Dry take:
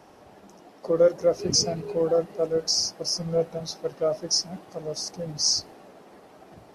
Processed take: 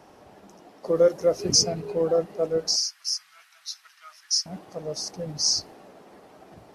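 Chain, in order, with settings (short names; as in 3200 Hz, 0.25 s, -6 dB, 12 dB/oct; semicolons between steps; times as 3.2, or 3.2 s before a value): 0.86–1.64 high shelf 6200 Hz +6.5 dB; 2.76–4.46 inverse Chebyshev high-pass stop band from 560 Hz, stop band 50 dB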